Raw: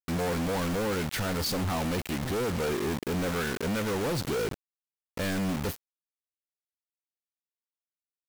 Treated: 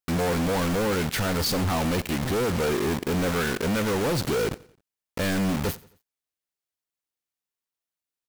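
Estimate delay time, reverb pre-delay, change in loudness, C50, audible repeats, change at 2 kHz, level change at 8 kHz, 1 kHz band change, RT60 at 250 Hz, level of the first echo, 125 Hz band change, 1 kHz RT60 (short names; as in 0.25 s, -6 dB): 88 ms, none, +4.5 dB, none, 2, +4.5 dB, +4.5 dB, +4.5 dB, none, -21.5 dB, +4.5 dB, none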